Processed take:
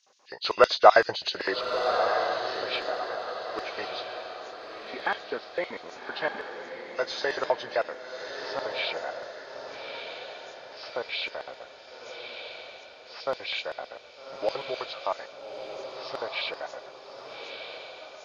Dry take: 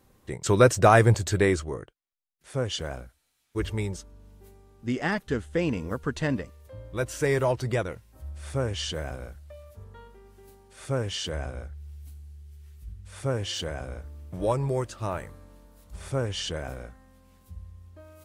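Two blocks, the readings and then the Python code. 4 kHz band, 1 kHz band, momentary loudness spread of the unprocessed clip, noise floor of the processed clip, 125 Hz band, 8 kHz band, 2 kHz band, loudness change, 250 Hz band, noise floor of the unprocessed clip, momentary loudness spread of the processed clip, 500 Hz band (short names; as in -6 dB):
+3.0 dB, +3.0 dB, 22 LU, -49 dBFS, -28.0 dB, -13.5 dB, +1.5 dB, -2.5 dB, -13.0 dB, -70 dBFS, 17 LU, -0.5 dB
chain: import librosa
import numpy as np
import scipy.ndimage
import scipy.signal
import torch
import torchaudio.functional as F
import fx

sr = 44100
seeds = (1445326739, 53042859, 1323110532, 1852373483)

y = fx.freq_compress(x, sr, knee_hz=1400.0, ratio=1.5)
y = fx.filter_lfo_highpass(y, sr, shape='square', hz=7.8, low_hz=700.0, high_hz=3600.0, q=1.4)
y = fx.echo_diffused(y, sr, ms=1231, feedback_pct=45, wet_db=-6)
y = y * 10.0 ** (2.5 / 20.0)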